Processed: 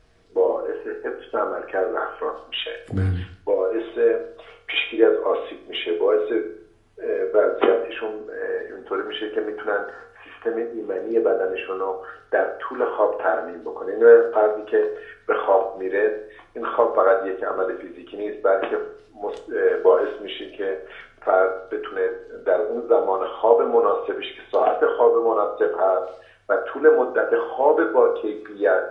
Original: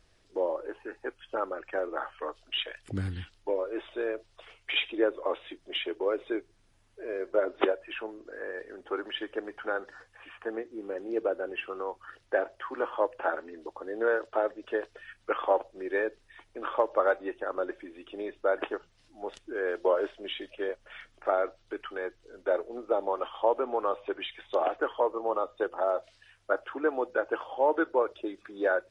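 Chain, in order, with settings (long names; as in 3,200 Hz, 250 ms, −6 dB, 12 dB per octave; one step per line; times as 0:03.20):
high-shelf EQ 2,900 Hz −8.5 dB
convolution reverb RT60 0.55 s, pre-delay 3 ms, DRR 2 dB
level +7 dB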